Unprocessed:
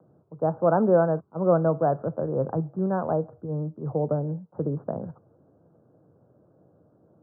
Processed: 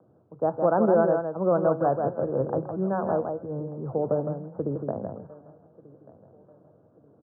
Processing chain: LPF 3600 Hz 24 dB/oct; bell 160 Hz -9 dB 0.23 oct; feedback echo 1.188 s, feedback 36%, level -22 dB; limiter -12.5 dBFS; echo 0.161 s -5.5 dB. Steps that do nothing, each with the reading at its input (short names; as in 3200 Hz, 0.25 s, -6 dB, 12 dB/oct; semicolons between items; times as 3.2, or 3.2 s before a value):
LPF 3600 Hz: input band ends at 1400 Hz